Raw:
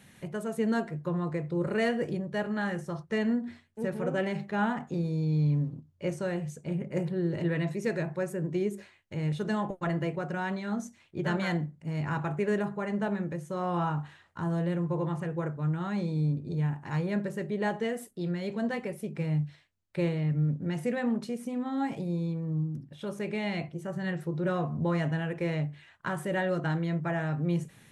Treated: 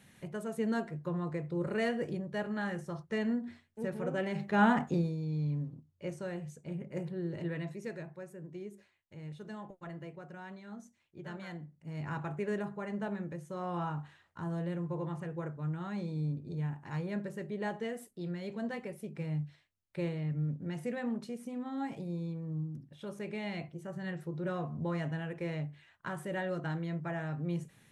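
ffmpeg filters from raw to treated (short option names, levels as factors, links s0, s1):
-af "volume=4.47,afade=t=in:st=4.29:d=0.5:silence=0.334965,afade=t=out:st=4.79:d=0.37:silence=0.237137,afade=t=out:st=7.45:d=0.76:silence=0.446684,afade=t=in:st=11.6:d=0.49:silence=0.398107"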